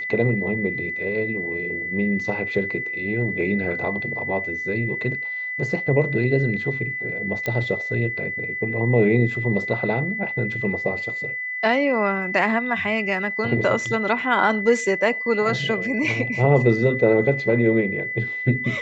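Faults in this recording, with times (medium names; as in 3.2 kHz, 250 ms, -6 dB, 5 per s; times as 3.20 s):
whine 2 kHz -26 dBFS
7.46 s: pop -12 dBFS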